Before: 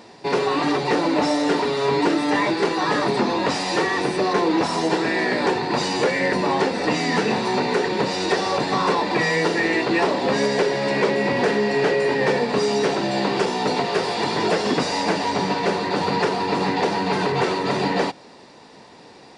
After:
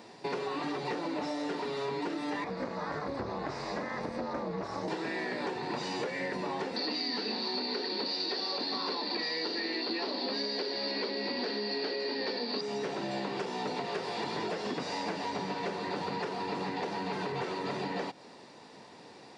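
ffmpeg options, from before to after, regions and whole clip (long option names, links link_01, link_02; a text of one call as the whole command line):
ffmpeg -i in.wav -filter_complex "[0:a]asettb=1/sr,asplit=3[link_01][link_02][link_03];[link_01]atrim=end=2.444[link_04];[link_02]atrim=start=2.44:end=4.88,asetpts=PTS-STARTPTS,afade=type=in:duration=0.004:curve=qsin,afade=type=out:start_time=2.436:duration=0.004:curve=qsin,lowpass=4800,equalizer=frequency=3000:width=2:gain=-12,aeval=exprs='val(0)*sin(2*PI*140*n/s)':channel_layout=same[link_05];[link_03]atrim=start=4.876[link_06];[link_04][link_05]acrossfade=duration=0.004:curve1=hsin:curve2=qsin[link_07];[link_07][link_06]acrossfade=duration=0.004:curve1=qsin:curve2=hsin,asettb=1/sr,asplit=3[link_08][link_09][link_10];[link_08]atrim=end=6.764[link_11];[link_09]atrim=start=6.76:end=12.61,asetpts=PTS-STARTPTS,afade=type=in:duration=0.004:curve=qsin,afade=type=out:start_time=5.846:duration=0.004:curve=qsin,lowpass=frequency=4500:width_type=q:width=13,lowshelf=frequency=190:width_type=q:width=3:gain=-8[link_12];[link_10]atrim=start=12.606[link_13];[link_11][link_12]acrossfade=duration=0.004:curve1=hsin:curve2=qsin[link_14];[link_14][link_13]acrossfade=duration=0.004:curve1=qsin:curve2=hsin,acrossover=split=7000[link_15][link_16];[link_16]acompressor=threshold=-52dB:ratio=4:attack=1:release=60[link_17];[link_15][link_17]amix=inputs=2:normalize=0,highpass=86,acompressor=threshold=-26dB:ratio=6,volume=-6dB" out.wav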